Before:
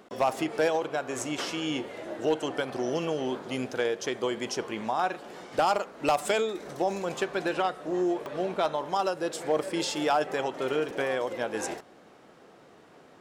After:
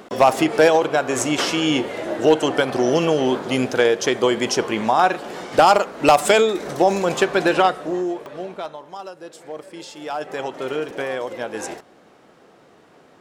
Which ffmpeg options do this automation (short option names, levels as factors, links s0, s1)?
-af "volume=11.9,afade=t=out:st=7.67:d=0.35:silence=0.375837,afade=t=out:st=8.02:d=0.8:silence=0.316228,afade=t=in:st=10:d=0.45:silence=0.316228"